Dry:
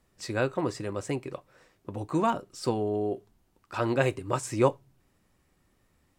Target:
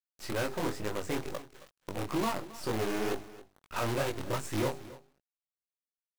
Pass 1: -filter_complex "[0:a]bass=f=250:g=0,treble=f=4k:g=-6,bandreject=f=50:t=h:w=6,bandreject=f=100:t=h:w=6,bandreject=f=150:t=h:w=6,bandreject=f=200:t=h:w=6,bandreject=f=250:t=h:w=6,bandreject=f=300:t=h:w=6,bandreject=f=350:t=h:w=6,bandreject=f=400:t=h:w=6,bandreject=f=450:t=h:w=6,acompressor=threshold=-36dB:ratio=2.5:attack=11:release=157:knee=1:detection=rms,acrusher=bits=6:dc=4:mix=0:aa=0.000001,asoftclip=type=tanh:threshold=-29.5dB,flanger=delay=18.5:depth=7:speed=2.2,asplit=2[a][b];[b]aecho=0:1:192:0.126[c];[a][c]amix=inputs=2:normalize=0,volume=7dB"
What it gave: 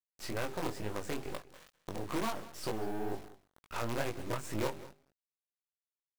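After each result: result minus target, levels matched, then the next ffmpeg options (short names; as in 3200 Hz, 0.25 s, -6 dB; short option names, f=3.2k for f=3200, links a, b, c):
echo 79 ms early; compressor: peak gain reduction +5 dB
-filter_complex "[0:a]bass=f=250:g=0,treble=f=4k:g=-6,bandreject=f=50:t=h:w=6,bandreject=f=100:t=h:w=6,bandreject=f=150:t=h:w=6,bandreject=f=200:t=h:w=6,bandreject=f=250:t=h:w=6,bandreject=f=300:t=h:w=6,bandreject=f=350:t=h:w=6,bandreject=f=400:t=h:w=6,bandreject=f=450:t=h:w=6,acompressor=threshold=-36dB:ratio=2.5:attack=11:release=157:knee=1:detection=rms,acrusher=bits=6:dc=4:mix=0:aa=0.000001,asoftclip=type=tanh:threshold=-29.5dB,flanger=delay=18.5:depth=7:speed=2.2,asplit=2[a][b];[b]aecho=0:1:271:0.126[c];[a][c]amix=inputs=2:normalize=0,volume=7dB"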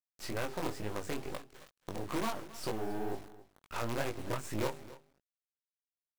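compressor: peak gain reduction +5 dB
-filter_complex "[0:a]bass=f=250:g=0,treble=f=4k:g=-6,bandreject=f=50:t=h:w=6,bandreject=f=100:t=h:w=6,bandreject=f=150:t=h:w=6,bandreject=f=200:t=h:w=6,bandreject=f=250:t=h:w=6,bandreject=f=300:t=h:w=6,bandreject=f=350:t=h:w=6,bandreject=f=400:t=h:w=6,bandreject=f=450:t=h:w=6,acompressor=threshold=-28dB:ratio=2.5:attack=11:release=157:knee=1:detection=rms,acrusher=bits=6:dc=4:mix=0:aa=0.000001,asoftclip=type=tanh:threshold=-29.5dB,flanger=delay=18.5:depth=7:speed=2.2,asplit=2[a][b];[b]aecho=0:1:271:0.126[c];[a][c]amix=inputs=2:normalize=0,volume=7dB"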